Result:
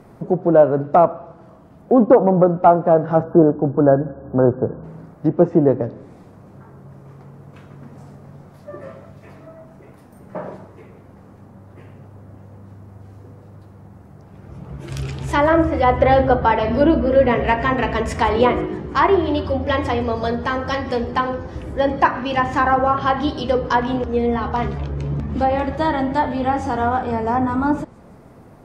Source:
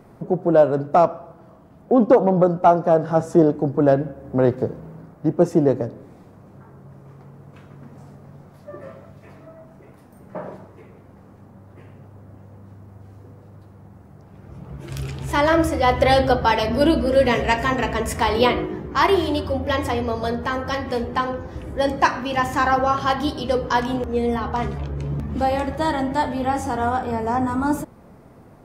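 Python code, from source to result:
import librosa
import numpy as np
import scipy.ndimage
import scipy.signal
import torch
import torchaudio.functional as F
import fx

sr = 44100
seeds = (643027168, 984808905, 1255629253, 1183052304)

y = fx.spec_erase(x, sr, start_s=3.23, length_s=1.61, low_hz=1700.0, high_hz=11000.0)
y = fx.env_lowpass_down(y, sr, base_hz=1800.0, full_db=-14.5)
y = fx.echo_wet_highpass(y, sr, ms=162, feedback_pct=67, hz=4800.0, wet_db=-19)
y = F.gain(torch.from_numpy(y), 2.5).numpy()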